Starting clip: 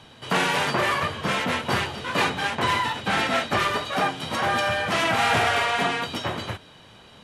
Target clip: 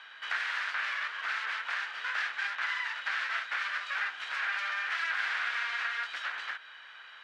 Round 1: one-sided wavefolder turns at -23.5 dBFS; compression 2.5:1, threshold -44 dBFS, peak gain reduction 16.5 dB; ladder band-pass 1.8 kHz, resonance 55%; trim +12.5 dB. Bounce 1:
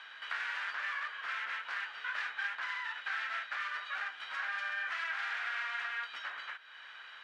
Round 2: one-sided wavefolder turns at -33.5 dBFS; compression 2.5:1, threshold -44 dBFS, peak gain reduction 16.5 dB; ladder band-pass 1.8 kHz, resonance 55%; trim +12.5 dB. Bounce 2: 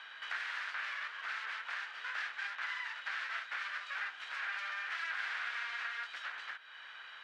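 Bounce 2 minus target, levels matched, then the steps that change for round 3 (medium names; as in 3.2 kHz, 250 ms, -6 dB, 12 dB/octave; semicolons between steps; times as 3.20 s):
compression: peak gain reduction +6.5 dB
change: compression 2.5:1, threshold -33 dBFS, peak gain reduction 10 dB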